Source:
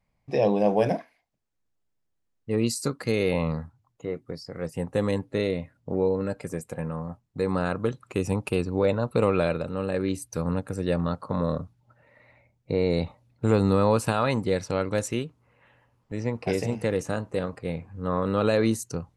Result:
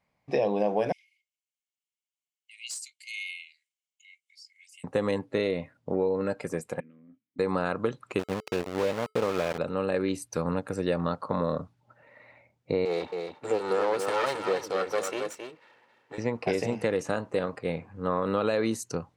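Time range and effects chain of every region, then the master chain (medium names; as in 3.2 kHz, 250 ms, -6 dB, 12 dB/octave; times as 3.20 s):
0.92–4.84 s: rippled Chebyshev high-pass 2.1 kHz, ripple 9 dB + hard clipper -30 dBFS
6.80–7.39 s: compression 3:1, threshold -36 dBFS + vowel filter i
8.19–9.58 s: low-pass 2.1 kHz 6 dB/octave + small samples zeroed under -26 dBFS + feedback comb 430 Hz, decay 0.21 s, harmonics odd, mix 40%
12.85–16.18 s: comb filter that takes the minimum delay 2.2 ms + high-pass 180 Hz + delay 270 ms -7 dB
whole clip: high-pass 310 Hz 6 dB/octave; treble shelf 8.1 kHz -11.5 dB; compression, threshold -26 dBFS; trim +4 dB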